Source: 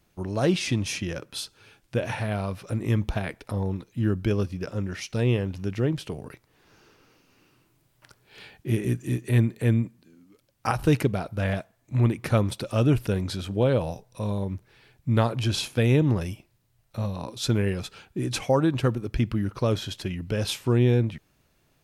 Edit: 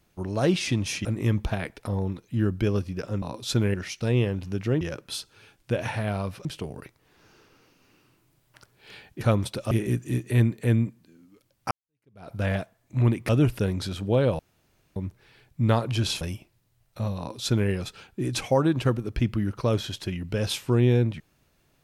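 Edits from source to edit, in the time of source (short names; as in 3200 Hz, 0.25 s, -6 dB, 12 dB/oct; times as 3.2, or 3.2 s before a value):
1.05–2.69 move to 5.93
10.69–11.29 fade in exponential
12.27–12.77 move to 8.69
13.87–14.44 room tone
15.69–16.19 cut
17.16–17.68 copy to 4.86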